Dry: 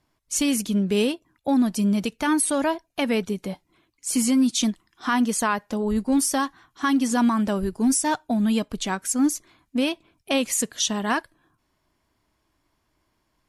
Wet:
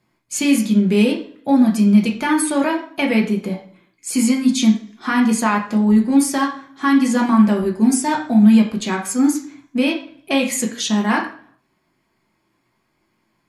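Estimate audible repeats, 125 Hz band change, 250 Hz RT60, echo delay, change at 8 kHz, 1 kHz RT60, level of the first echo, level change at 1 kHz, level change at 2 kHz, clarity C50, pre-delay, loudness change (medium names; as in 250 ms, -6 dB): no echo, no reading, 0.60 s, no echo, +0.5 dB, 0.50 s, no echo, +4.5 dB, +6.0 dB, 8.5 dB, 3 ms, +6.5 dB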